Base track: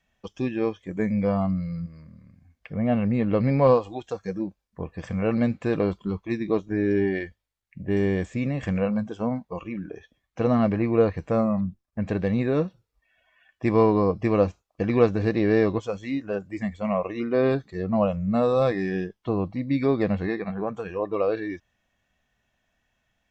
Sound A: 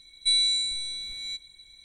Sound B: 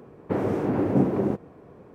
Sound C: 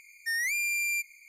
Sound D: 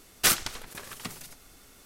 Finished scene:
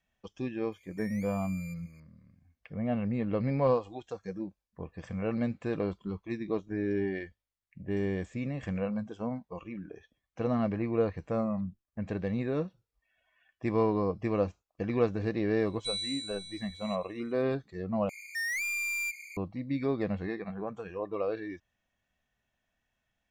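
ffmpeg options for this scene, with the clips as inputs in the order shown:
ffmpeg -i bed.wav -i cue0.wav -i cue1.wav -i cue2.wav -filter_complex "[3:a]asplit=2[link_01][link_02];[0:a]volume=-8dB[link_03];[link_01]acompressor=threshold=-38dB:ratio=6:attack=3.2:release=140:knee=1:detection=peak[link_04];[link_02]asplit=2[link_05][link_06];[link_06]highpass=frequency=720:poles=1,volume=18dB,asoftclip=type=tanh:threshold=-25.5dB[link_07];[link_05][link_07]amix=inputs=2:normalize=0,lowpass=frequency=7300:poles=1,volume=-6dB[link_08];[link_03]asplit=2[link_09][link_10];[link_09]atrim=end=18.094[link_11];[link_08]atrim=end=1.28,asetpts=PTS-STARTPTS,volume=-4.5dB[link_12];[link_10]atrim=start=19.366[link_13];[link_04]atrim=end=1.28,asetpts=PTS-STARTPTS,volume=-12.5dB,afade=type=in:duration=0.004:curve=hsin,afade=type=out:start_time=1.276:duration=0.004:curve=hsin,adelay=720[link_14];[1:a]atrim=end=1.84,asetpts=PTS-STARTPTS,volume=-12.5dB,afade=type=in:duration=0.004:curve=hsin,afade=type=out:start_time=1.836:duration=0.004:curve=hsin,adelay=15590[link_15];[link_11][link_12]acrossfade=duration=0.004:curve1=hsin:curve2=hsin[link_16];[link_16][link_13]acrossfade=duration=0.004:curve1=hsin:curve2=hsin[link_17];[link_17][link_14][link_15]amix=inputs=3:normalize=0" out.wav

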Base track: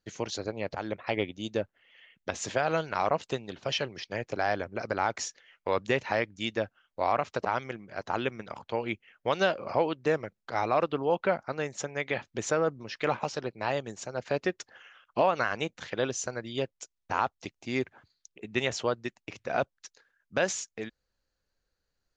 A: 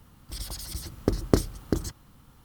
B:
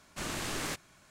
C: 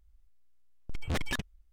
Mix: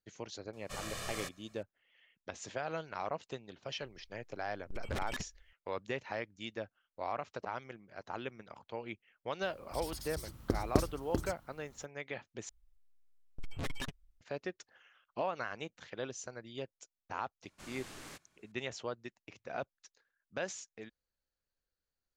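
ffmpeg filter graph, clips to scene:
ffmpeg -i bed.wav -i cue0.wav -i cue1.wav -i cue2.wav -filter_complex "[2:a]asplit=2[link_01][link_02];[3:a]asplit=2[link_03][link_04];[0:a]volume=-11dB[link_05];[link_01]aecho=1:1:1.7:0.82[link_06];[link_03]alimiter=level_in=9dB:limit=-24dB:level=0:latency=1:release=25,volume=-9dB[link_07];[link_04]aecho=1:1:7.3:0.45[link_08];[link_05]asplit=2[link_09][link_10];[link_09]atrim=end=12.494[link_11];[link_08]atrim=end=1.72,asetpts=PTS-STARTPTS,volume=-7.5dB[link_12];[link_10]atrim=start=14.206[link_13];[link_06]atrim=end=1.1,asetpts=PTS-STARTPTS,volume=-8dB,afade=type=in:duration=0.004:curve=hsin,afade=type=out:start_time=1.096:duration=0.004:curve=hsin,adelay=530[link_14];[link_07]atrim=end=1.72,asetpts=PTS-STARTPTS,volume=-2.5dB,afade=type=in:duration=0.004:curve=hsin,afade=type=out:start_time=1.716:duration=0.004:curve=hsin,adelay=168021S[link_15];[1:a]atrim=end=2.44,asetpts=PTS-STARTPTS,volume=-8dB,afade=type=in:duration=0.004:curve=hsin,afade=type=out:start_time=2.436:duration=0.004:curve=hsin,adelay=9420[link_16];[link_02]atrim=end=1.1,asetpts=PTS-STARTPTS,volume=-14dB,afade=type=in:duration=0.004:curve=hsin,afade=type=out:start_time=1.096:duration=0.004:curve=hsin,adelay=17420[link_17];[link_11][link_12]acrossfade=duration=0.004:curve1=hsin:curve2=hsin[link_18];[link_18][link_13]acrossfade=duration=0.004:curve1=hsin:curve2=hsin[link_19];[link_19][link_14][link_15][link_16][link_17]amix=inputs=5:normalize=0" out.wav

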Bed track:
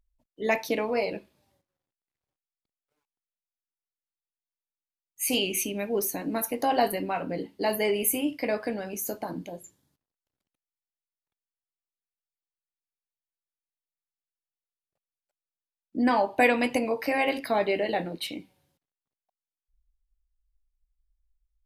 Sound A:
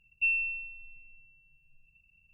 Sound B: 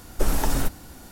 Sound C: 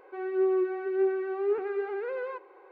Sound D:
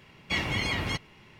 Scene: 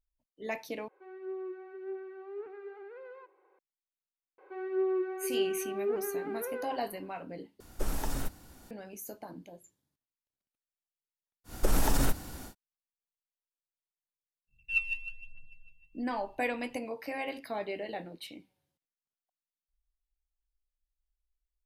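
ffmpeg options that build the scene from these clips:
ffmpeg -i bed.wav -i cue0.wav -i cue1.wav -i cue2.wav -filter_complex "[3:a]asplit=2[link_01][link_02];[2:a]asplit=2[link_03][link_04];[0:a]volume=-11dB[link_05];[link_04]alimiter=level_in=15dB:limit=-1dB:release=50:level=0:latency=1[link_06];[1:a]aphaser=in_gain=1:out_gain=1:delay=1.1:decay=0.75:speed=1.1:type=triangular[link_07];[link_05]asplit=3[link_08][link_09][link_10];[link_08]atrim=end=0.884[link_11];[link_01]atrim=end=2.71,asetpts=PTS-STARTPTS,volume=-14dB[link_12];[link_09]atrim=start=3.586:end=7.604[link_13];[link_03]atrim=end=1.11,asetpts=PTS-STARTPTS,volume=-10.5dB[link_14];[link_10]atrim=start=8.706[link_15];[link_02]atrim=end=2.71,asetpts=PTS-STARTPTS,volume=-4.5dB,afade=type=in:duration=0.004:curve=hsin,afade=type=out:start_time=2.706:duration=0.004:curve=hsin,adelay=4380[link_16];[link_06]atrim=end=1.11,asetpts=PTS-STARTPTS,volume=-15dB,afade=type=in:duration=0.1,afade=type=out:start_time=1.01:duration=0.1,adelay=11440[link_17];[link_07]atrim=end=2.33,asetpts=PTS-STARTPTS,volume=-7dB,afade=type=in:duration=0.1,afade=type=out:start_time=2.23:duration=0.1,adelay=14470[link_18];[link_11][link_12]acrossfade=duration=0.004:curve1=hsin:curve2=hsin[link_19];[link_19][link_13]acrossfade=duration=0.004:curve1=hsin:curve2=hsin[link_20];[link_20][link_14]acrossfade=duration=0.004:curve1=hsin:curve2=hsin[link_21];[link_21][link_15]acrossfade=duration=0.004:curve1=hsin:curve2=hsin[link_22];[link_22][link_16][link_17][link_18]amix=inputs=4:normalize=0" out.wav

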